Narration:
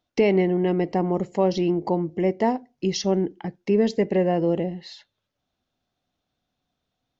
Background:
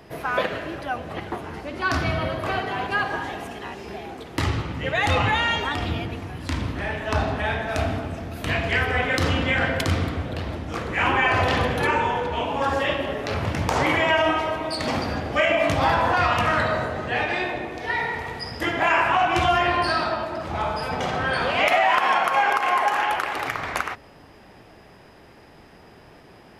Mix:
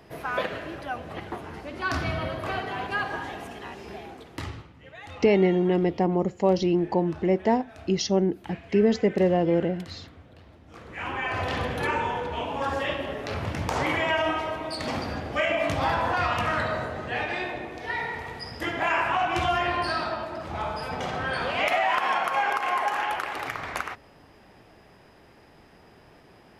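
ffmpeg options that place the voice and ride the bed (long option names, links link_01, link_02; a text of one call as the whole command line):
ffmpeg -i stem1.wav -i stem2.wav -filter_complex "[0:a]adelay=5050,volume=-0.5dB[link_01];[1:a]volume=12dB,afade=type=out:start_time=3.97:duration=0.74:silence=0.141254,afade=type=in:start_time=10.6:duration=1.28:silence=0.149624[link_02];[link_01][link_02]amix=inputs=2:normalize=0" out.wav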